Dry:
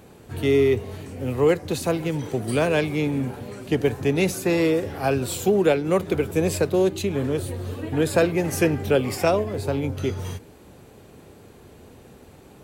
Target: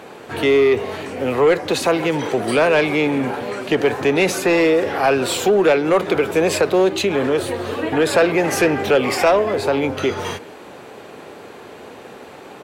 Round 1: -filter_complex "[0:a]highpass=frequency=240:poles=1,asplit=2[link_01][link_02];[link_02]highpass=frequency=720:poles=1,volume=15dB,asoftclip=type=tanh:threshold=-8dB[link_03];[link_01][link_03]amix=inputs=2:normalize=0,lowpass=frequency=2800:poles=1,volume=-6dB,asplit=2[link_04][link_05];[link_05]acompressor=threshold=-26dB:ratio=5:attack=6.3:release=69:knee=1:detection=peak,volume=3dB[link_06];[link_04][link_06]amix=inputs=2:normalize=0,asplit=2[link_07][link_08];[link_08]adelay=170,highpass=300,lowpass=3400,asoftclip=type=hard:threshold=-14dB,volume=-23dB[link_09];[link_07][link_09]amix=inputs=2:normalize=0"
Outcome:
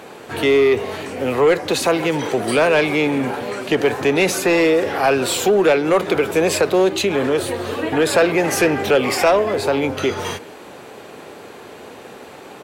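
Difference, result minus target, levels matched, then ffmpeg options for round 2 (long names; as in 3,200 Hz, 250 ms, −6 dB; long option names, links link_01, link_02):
8,000 Hz band +2.5 dB
-filter_complex "[0:a]highpass=frequency=240:poles=1,highshelf=frequency=4700:gain=-4.5,asplit=2[link_01][link_02];[link_02]highpass=frequency=720:poles=1,volume=15dB,asoftclip=type=tanh:threshold=-8dB[link_03];[link_01][link_03]amix=inputs=2:normalize=0,lowpass=frequency=2800:poles=1,volume=-6dB,asplit=2[link_04][link_05];[link_05]acompressor=threshold=-26dB:ratio=5:attack=6.3:release=69:knee=1:detection=peak,volume=3dB[link_06];[link_04][link_06]amix=inputs=2:normalize=0,asplit=2[link_07][link_08];[link_08]adelay=170,highpass=300,lowpass=3400,asoftclip=type=hard:threshold=-14dB,volume=-23dB[link_09];[link_07][link_09]amix=inputs=2:normalize=0"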